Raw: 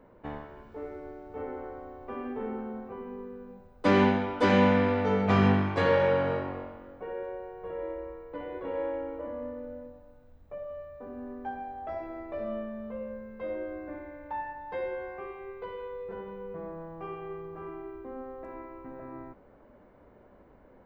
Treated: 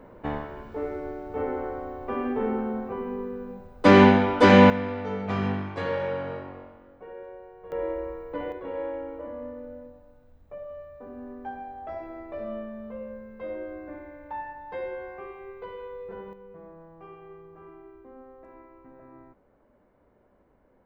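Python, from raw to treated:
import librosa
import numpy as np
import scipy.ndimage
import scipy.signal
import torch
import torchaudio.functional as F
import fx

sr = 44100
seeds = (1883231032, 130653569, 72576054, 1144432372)

y = fx.gain(x, sr, db=fx.steps((0.0, 8.0), (4.7, -5.0), (7.72, 6.0), (8.52, 0.0), (16.33, -7.0)))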